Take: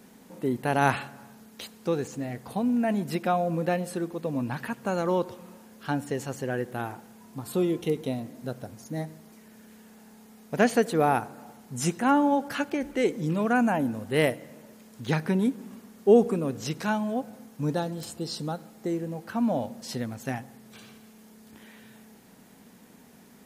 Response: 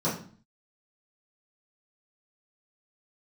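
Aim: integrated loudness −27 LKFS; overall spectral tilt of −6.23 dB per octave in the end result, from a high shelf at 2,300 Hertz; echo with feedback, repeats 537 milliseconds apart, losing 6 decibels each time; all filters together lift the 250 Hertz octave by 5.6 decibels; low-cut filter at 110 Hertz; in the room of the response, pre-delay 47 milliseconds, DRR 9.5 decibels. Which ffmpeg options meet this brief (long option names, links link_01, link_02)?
-filter_complex "[0:a]highpass=110,equalizer=frequency=250:width_type=o:gain=7,highshelf=frequency=2300:gain=-6,aecho=1:1:537|1074|1611|2148|2685|3222:0.501|0.251|0.125|0.0626|0.0313|0.0157,asplit=2[link_01][link_02];[1:a]atrim=start_sample=2205,adelay=47[link_03];[link_02][link_03]afir=irnorm=-1:irlink=0,volume=-20dB[link_04];[link_01][link_04]amix=inputs=2:normalize=0,volume=-5dB"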